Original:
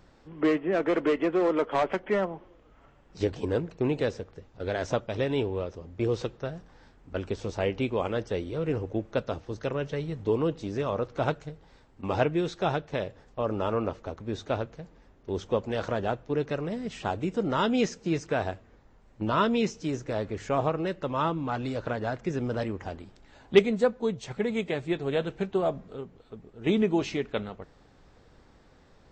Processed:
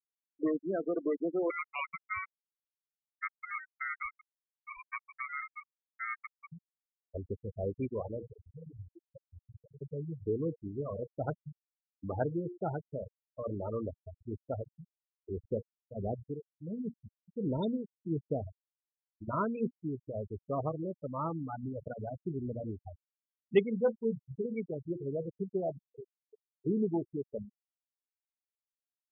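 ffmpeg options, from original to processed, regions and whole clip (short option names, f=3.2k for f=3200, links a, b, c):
-filter_complex "[0:a]asettb=1/sr,asplit=3[a][b][c];[a]atrim=end=1.504[d];[b]atrim=start=1.5:end=6.52,asetpts=PTS-STARTPTS,afade=t=in:d=0.004:c=qsin,afade=t=out:st=5.016:d=0.004:c=qsin,aeval=exprs='val(0)*sin(2*PI*1700*n/s)':c=same,aecho=1:1:285:0.133,atrim=end_sample=221382[e];[c]atrim=start=6.516[f];[d][e]acrossfade=d=0.004:c1=hsin:c2=qsin[g];[g][f]acrossfade=d=0.004:c1=qsin:c2=hsin,asettb=1/sr,asplit=3[h][i][j];[h]atrim=end=8.264[k];[i]atrim=start=8.26:end=9.82,asetpts=PTS-STARTPTS,afade=t=in:d=0.004:c=qsin,afade=t=out:st=1.556:d=0.004:c=qsin,equalizer=f=420:w=0.32:g=-5,acompressor=threshold=-34dB:ratio=8:attack=3.2:release=140:knee=1:detection=peak[l];[j]atrim=start=9.816[m];[k][l]acrossfade=d=0.004:c1=hsin:c2=qsin[n];[n][m]acrossfade=d=0.004:c1=qsin:c2=hsin,asettb=1/sr,asplit=3[o][p][q];[o]atrim=end=15.424[r];[p]atrim=start=15.42:end=19.28,asetpts=PTS-STARTPTS,afade=t=in:d=0.004:c=qsin,afade=t=out:st=3.856:d=0.004:c=qsin,equalizer=f=1.2k:t=o:w=1.2:g=-13,acontrast=27,tremolo=f=1.4:d=0.95[s];[q]atrim=start=19.276[t];[r][s]acrossfade=d=0.004:c1=hsin:c2=qsin[u];[u][t]acrossfade=d=0.004:c1=qsin:c2=hsin,asettb=1/sr,asplit=3[v][w][x];[v]atrim=end=23.744[y];[w]atrim=start=23.74:end=24.46,asetpts=PTS-STARTPTS,afade=t=in:d=0.004:c=qsin,afade=t=out:st=0.716:d=0.004:c=qsin,highshelf=f=4.1k:g=-6.5,asplit=2[z][aa];[aa]adelay=22,volume=-4.5dB[ab];[z][ab]amix=inputs=2:normalize=0,atrim=end_sample=31752[ac];[x]atrim=start=24.456[ad];[y][ac]acrossfade=d=0.004:c1=hsin:c2=qsin[ae];[ae][ad]acrossfade=d=0.004:c1=qsin:c2=hsin,lowshelf=f=170:g=5,bandreject=f=118.2:t=h:w=4,bandreject=f=236.4:t=h:w=4,bandreject=f=354.6:t=h:w=4,bandreject=f=472.8:t=h:w=4,bandreject=f=591:t=h:w=4,bandreject=f=709.2:t=h:w=4,bandreject=f=827.4:t=h:w=4,bandreject=f=945.6:t=h:w=4,bandreject=f=1.0638k:t=h:w=4,afftfilt=real='re*gte(hypot(re,im),0.126)':imag='im*gte(hypot(re,im),0.126)':win_size=1024:overlap=0.75,volume=-7.5dB"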